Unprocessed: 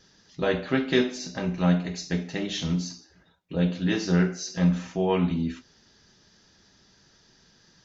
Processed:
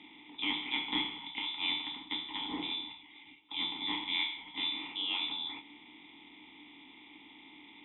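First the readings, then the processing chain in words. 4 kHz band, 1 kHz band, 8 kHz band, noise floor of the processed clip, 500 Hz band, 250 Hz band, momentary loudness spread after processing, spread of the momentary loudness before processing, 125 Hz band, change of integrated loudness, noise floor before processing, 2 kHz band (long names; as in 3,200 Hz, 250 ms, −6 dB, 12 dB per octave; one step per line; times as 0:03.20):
+4.5 dB, −7.0 dB, can't be measured, −56 dBFS, −26.5 dB, −19.0 dB, 21 LU, 8 LU, −33.5 dB, −8.0 dB, −60 dBFS, −4.0 dB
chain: compressor on every frequency bin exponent 0.6
voice inversion scrambler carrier 3,700 Hz
formant filter u
level +6.5 dB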